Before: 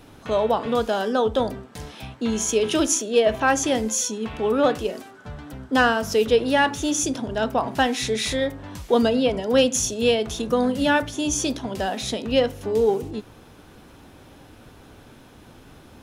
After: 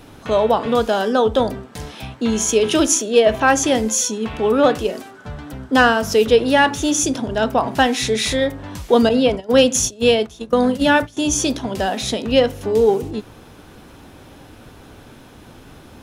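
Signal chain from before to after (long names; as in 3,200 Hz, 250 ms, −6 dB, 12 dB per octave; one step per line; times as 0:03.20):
0:09.09–0:11.17: noise gate −24 dBFS, range −16 dB
level +5 dB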